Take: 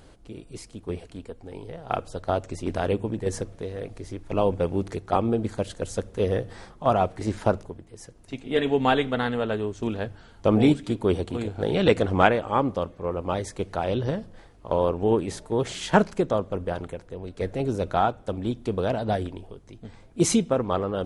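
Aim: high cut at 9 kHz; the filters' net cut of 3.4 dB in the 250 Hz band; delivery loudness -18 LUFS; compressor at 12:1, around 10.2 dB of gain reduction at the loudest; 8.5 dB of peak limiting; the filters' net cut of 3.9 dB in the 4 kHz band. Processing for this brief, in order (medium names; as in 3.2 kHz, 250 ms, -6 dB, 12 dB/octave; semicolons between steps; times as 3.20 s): low-pass 9 kHz; peaking EQ 250 Hz -4.5 dB; peaking EQ 4 kHz -5 dB; compression 12:1, threshold -24 dBFS; trim +15.5 dB; peak limiter -5 dBFS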